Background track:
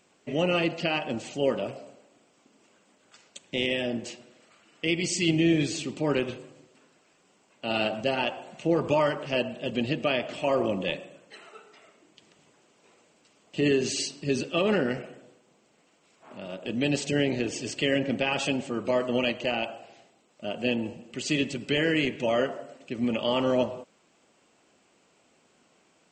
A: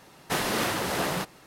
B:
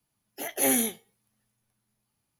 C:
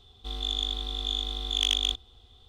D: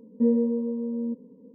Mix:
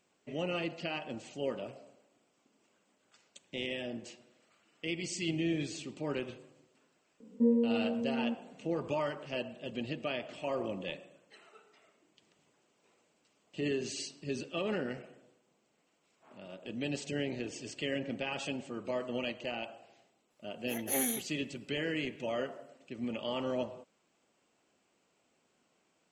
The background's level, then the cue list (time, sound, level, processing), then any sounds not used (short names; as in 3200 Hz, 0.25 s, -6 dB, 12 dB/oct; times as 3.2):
background track -10 dB
7.2 add D -5 dB
20.3 add B -8 dB
not used: A, C